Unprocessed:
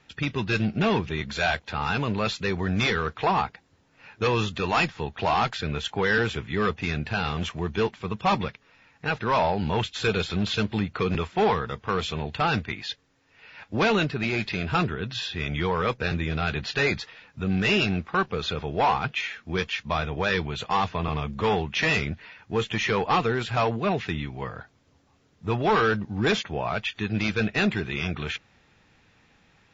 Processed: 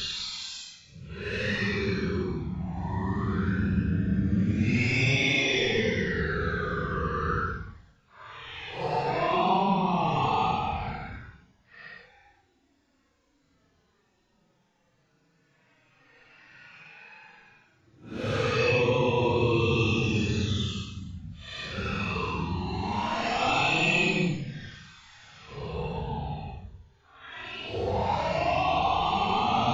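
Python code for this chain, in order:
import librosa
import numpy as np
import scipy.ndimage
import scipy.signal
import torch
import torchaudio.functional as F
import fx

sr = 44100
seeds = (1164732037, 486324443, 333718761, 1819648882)

y = fx.env_flanger(x, sr, rest_ms=7.1, full_db=-19.0)
y = fx.paulstretch(y, sr, seeds[0], factor=9.5, window_s=0.05, from_s=2.3)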